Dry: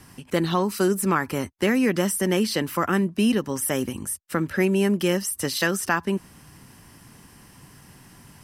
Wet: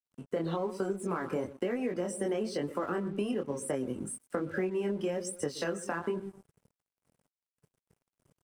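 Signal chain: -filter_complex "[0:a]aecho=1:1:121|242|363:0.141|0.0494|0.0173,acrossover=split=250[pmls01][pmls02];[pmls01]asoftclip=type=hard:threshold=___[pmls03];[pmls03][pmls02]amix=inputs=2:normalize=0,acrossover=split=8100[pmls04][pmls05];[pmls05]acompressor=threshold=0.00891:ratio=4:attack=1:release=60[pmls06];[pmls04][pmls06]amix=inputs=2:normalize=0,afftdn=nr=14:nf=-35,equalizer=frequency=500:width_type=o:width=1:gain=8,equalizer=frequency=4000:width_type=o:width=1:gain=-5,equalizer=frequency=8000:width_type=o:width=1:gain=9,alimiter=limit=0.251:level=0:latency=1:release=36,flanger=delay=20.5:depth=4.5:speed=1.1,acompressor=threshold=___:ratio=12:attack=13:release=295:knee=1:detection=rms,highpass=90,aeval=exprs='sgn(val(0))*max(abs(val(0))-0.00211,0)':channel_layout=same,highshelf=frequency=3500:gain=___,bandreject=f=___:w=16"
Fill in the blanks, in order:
0.0335, 0.0447, -6, 1800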